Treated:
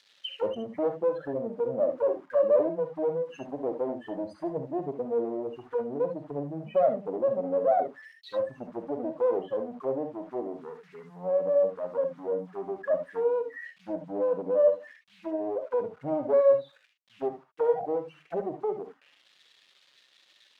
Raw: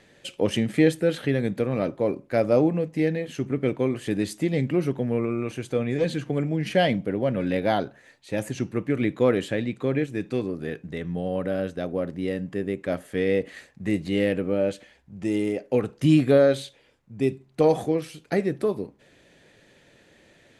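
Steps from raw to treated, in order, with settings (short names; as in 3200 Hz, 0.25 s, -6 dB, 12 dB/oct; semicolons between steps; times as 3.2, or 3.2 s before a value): spectral contrast raised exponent 3.5; in parallel at -1 dB: limiter -20.5 dBFS, peak gain reduction 10 dB; on the sum: one-sided clip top -23 dBFS, bottom -12 dBFS; on a send: thin delay 0.1 s, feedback 42%, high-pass 3600 Hz, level -18.5 dB; on the sum: requantised 8-bit, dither none; auto-wah 610–4100 Hz, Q 2.8, down, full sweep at -20.5 dBFS; non-linear reverb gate 90 ms rising, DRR 4.5 dB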